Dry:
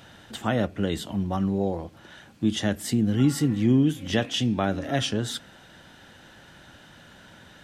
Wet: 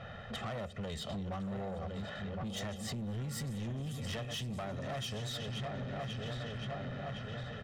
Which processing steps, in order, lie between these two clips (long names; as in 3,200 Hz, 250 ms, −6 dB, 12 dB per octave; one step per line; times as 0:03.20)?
feedback delay that plays each chunk backwards 531 ms, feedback 71%, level −12 dB
low-pass that shuts in the quiet parts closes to 2,000 Hz, open at −19 dBFS
comb filter 1.6 ms, depth 95%
downward compressor 12 to 1, threshold −33 dBFS, peak gain reduction 18 dB
soft clipping −37 dBFS, distortion −11 dB
on a send: single-tap delay 983 ms −21.5 dB
on the sum: level +2 dB